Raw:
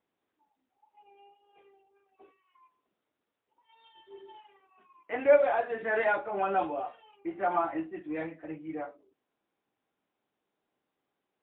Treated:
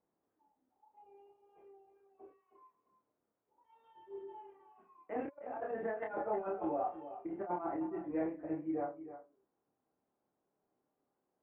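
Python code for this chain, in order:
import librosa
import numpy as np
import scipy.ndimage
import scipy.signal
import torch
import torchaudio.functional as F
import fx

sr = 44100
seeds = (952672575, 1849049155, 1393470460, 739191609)

y = scipy.signal.sosfilt(scipy.signal.butter(2, 1000.0, 'lowpass', fs=sr, output='sos'), x)
y = fx.over_compress(y, sr, threshold_db=-34.0, ratio=-0.5)
y = fx.doubler(y, sr, ms=28.0, db=-3.0)
y = y + 10.0 ** (-12.5 / 20.0) * np.pad(y, (int(314 * sr / 1000.0), 0))[:len(y)]
y = y * librosa.db_to_amplitude(-5.5)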